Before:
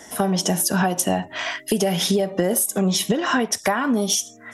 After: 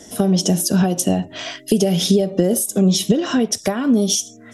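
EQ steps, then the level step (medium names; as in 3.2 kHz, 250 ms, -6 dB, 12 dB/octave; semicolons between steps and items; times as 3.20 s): peaking EQ 940 Hz -12 dB 1 oct; peaking EQ 1.9 kHz -11 dB 1.1 oct; treble shelf 9.3 kHz -12 dB; +6.5 dB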